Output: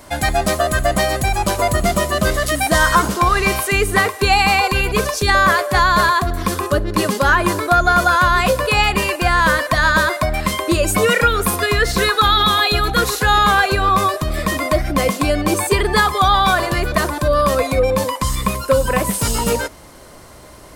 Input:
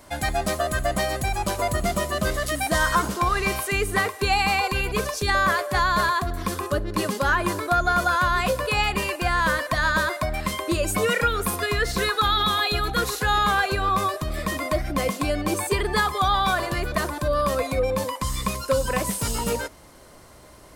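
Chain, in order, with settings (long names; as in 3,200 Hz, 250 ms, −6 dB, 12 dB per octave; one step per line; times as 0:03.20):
0:18.35–0:19.14: parametric band 5,600 Hz −6 dB 1.3 octaves
level +7.5 dB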